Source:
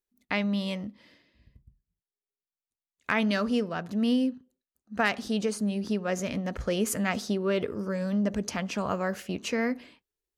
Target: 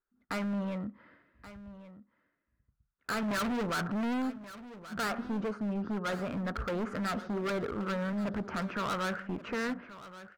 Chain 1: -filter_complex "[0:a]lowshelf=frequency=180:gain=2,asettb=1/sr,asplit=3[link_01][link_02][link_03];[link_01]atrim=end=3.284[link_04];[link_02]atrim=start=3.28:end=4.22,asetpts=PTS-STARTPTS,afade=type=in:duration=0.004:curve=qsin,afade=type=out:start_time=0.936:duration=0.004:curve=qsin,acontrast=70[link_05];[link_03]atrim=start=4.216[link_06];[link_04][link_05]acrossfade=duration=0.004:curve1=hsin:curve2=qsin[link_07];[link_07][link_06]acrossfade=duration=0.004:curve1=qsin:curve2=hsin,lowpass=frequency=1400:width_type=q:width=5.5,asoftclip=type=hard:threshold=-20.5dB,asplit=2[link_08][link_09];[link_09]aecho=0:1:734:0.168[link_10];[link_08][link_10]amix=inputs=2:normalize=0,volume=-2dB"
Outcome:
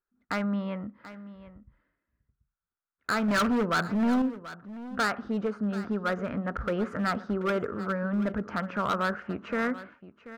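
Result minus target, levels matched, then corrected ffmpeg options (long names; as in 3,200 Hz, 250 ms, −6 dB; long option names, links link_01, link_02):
echo 394 ms early; hard clipping: distortion −4 dB
-filter_complex "[0:a]lowshelf=frequency=180:gain=2,asettb=1/sr,asplit=3[link_01][link_02][link_03];[link_01]atrim=end=3.284[link_04];[link_02]atrim=start=3.28:end=4.22,asetpts=PTS-STARTPTS,afade=type=in:duration=0.004:curve=qsin,afade=type=out:start_time=0.936:duration=0.004:curve=qsin,acontrast=70[link_05];[link_03]atrim=start=4.216[link_06];[link_04][link_05]acrossfade=duration=0.004:curve1=hsin:curve2=qsin[link_07];[link_07][link_06]acrossfade=duration=0.004:curve1=qsin:curve2=hsin,lowpass=frequency=1400:width_type=q:width=5.5,asoftclip=type=hard:threshold=-28.5dB,asplit=2[link_08][link_09];[link_09]aecho=0:1:1128:0.168[link_10];[link_08][link_10]amix=inputs=2:normalize=0,volume=-2dB"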